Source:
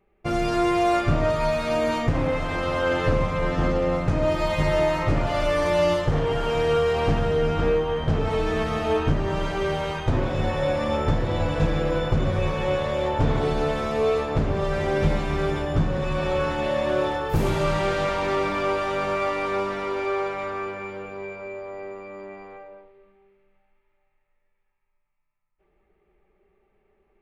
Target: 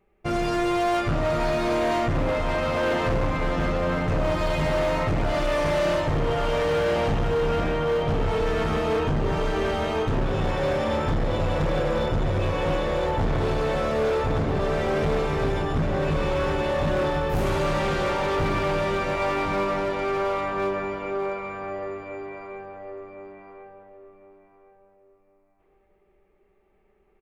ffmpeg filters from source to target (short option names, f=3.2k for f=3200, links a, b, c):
-filter_complex "[0:a]asplit=2[a][b];[b]adelay=1060,lowpass=f=1.6k:p=1,volume=-3dB,asplit=2[c][d];[d]adelay=1060,lowpass=f=1.6k:p=1,volume=0.3,asplit=2[e][f];[f]adelay=1060,lowpass=f=1.6k:p=1,volume=0.3,asplit=2[g][h];[h]adelay=1060,lowpass=f=1.6k:p=1,volume=0.3[i];[a][c][e][g][i]amix=inputs=5:normalize=0,volume=20dB,asoftclip=hard,volume=-20dB"